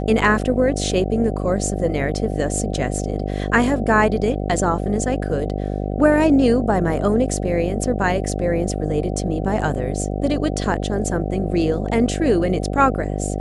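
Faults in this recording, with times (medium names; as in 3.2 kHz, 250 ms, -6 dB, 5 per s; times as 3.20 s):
buzz 50 Hz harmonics 15 -24 dBFS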